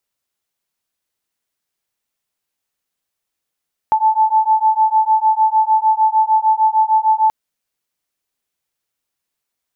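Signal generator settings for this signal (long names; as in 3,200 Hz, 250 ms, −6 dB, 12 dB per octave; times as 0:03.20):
two tones that beat 871 Hz, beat 6.6 Hz, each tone −14 dBFS 3.38 s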